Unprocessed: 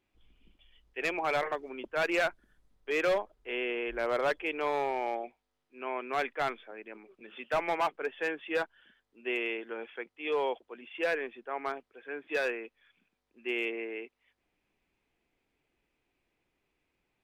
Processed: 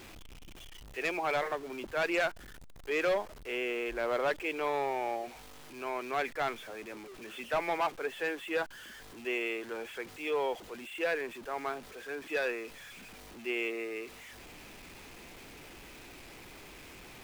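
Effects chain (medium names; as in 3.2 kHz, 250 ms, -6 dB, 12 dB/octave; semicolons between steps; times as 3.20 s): jump at every zero crossing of -42 dBFS; trim -2 dB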